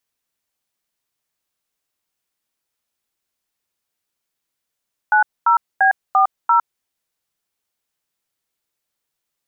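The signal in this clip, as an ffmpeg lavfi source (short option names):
-f lavfi -i "aevalsrc='0.224*clip(min(mod(t,0.343),0.107-mod(t,0.343))/0.002,0,1)*(eq(floor(t/0.343),0)*(sin(2*PI*852*mod(t,0.343))+sin(2*PI*1477*mod(t,0.343)))+eq(floor(t/0.343),1)*(sin(2*PI*941*mod(t,0.343))+sin(2*PI*1336*mod(t,0.343)))+eq(floor(t/0.343),2)*(sin(2*PI*770*mod(t,0.343))+sin(2*PI*1633*mod(t,0.343)))+eq(floor(t/0.343),3)*(sin(2*PI*770*mod(t,0.343))+sin(2*PI*1209*mod(t,0.343)))+eq(floor(t/0.343),4)*(sin(2*PI*941*mod(t,0.343))+sin(2*PI*1336*mod(t,0.343))))':d=1.715:s=44100"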